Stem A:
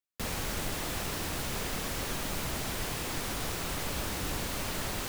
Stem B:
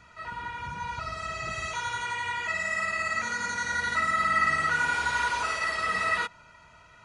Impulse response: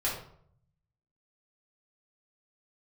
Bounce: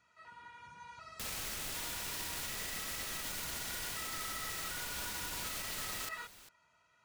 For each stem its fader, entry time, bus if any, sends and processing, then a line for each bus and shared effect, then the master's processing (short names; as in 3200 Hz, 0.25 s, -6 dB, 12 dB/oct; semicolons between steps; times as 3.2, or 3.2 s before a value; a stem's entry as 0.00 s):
-4.0 dB, 1.00 s, no send, echo send -20 dB, tilt shelf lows -6 dB, about 1400 Hz
-17.0 dB, 0.00 s, no send, no echo send, HPF 190 Hz 6 dB/oct; high shelf 5300 Hz +6.5 dB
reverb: off
echo: echo 0.399 s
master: limiter -31 dBFS, peak gain reduction 8 dB